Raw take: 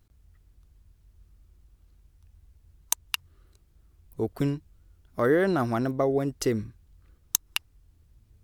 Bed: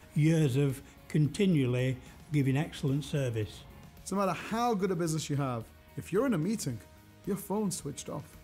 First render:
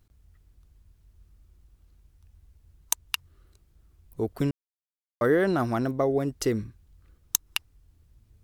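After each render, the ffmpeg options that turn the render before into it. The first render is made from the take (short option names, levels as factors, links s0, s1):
-filter_complex "[0:a]asplit=3[s0][s1][s2];[s0]atrim=end=4.51,asetpts=PTS-STARTPTS,afade=t=out:st=4.506:d=0.004:c=hsin[s3];[s1]atrim=start=4.51:end=5.21,asetpts=PTS-STARTPTS,volume=0[s4];[s2]atrim=start=5.21,asetpts=PTS-STARTPTS,afade=t=in:d=0.004:c=hsin[s5];[s3][s4][s5]concat=n=3:v=0:a=1"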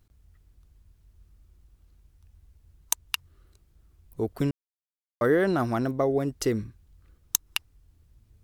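-af anull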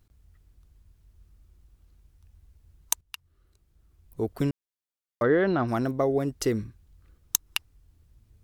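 -filter_complex "[0:a]asplit=3[s0][s1][s2];[s0]afade=t=out:st=5.22:d=0.02[s3];[s1]lowpass=f=4200:w=0.5412,lowpass=f=4200:w=1.3066,afade=t=in:st=5.22:d=0.02,afade=t=out:st=5.67:d=0.02[s4];[s2]afade=t=in:st=5.67:d=0.02[s5];[s3][s4][s5]amix=inputs=3:normalize=0,asplit=2[s6][s7];[s6]atrim=end=3.01,asetpts=PTS-STARTPTS,afade=t=out:st=3.006:d=0.004:c=hsin:silence=0.199526[s8];[s7]atrim=start=3.01,asetpts=PTS-STARTPTS,afade=t=in:d=1.25:silence=0.199526[s9];[s8][s9]concat=n=2:v=0:a=1"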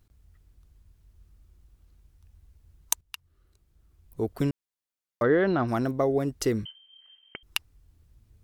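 -filter_complex "[0:a]asettb=1/sr,asplit=3[s0][s1][s2];[s0]atrim=end=6.654[s3];[s1]atrim=start=6.65:end=7.43,asetpts=PTS-STARTPTS,afade=t=in:d=0.004:c=qsin,afade=t=out:st=0.776:d=0.004:c=qsin,lowpass=f=2700:t=q:w=0.5098,lowpass=f=2700:t=q:w=0.6013,lowpass=f=2700:t=q:w=0.9,lowpass=f=2700:t=q:w=2.563,afreqshift=-3200[s4];[s2]atrim=start=7.426[s5];[s3][s4]acrossfade=d=0.004:c1=hsin:c2=qsin[s6];[s6][s5]acrossfade=d=0.004:c1=qsin:c2=hsin"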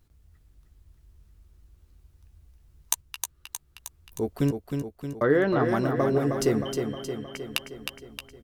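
-filter_complex "[0:a]asplit=2[s0][s1];[s1]adelay=14,volume=0.355[s2];[s0][s2]amix=inputs=2:normalize=0,aecho=1:1:312|624|936|1248|1560|1872|2184|2496:0.501|0.301|0.18|0.108|0.065|0.039|0.0234|0.014"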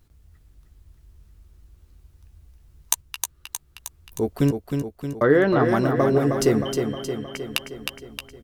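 -af "volume=1.68,alimiter=limit=0.794:level=0:latency=1"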